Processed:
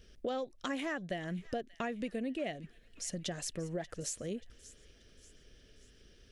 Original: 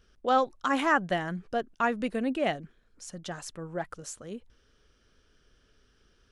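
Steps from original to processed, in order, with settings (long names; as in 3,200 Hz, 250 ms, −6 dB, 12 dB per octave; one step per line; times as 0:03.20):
flat-topped bell 1,100 Hz −11 dB 1.1 octaves
downward compressor 6 to 1, threshold −40 dBFS, peak gain reduction 16 dB
on a send: delay with a high-pass on its return 584 ms, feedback 45%, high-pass 1,700 Hz, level −16.5 dB
on the sum: level +5 dB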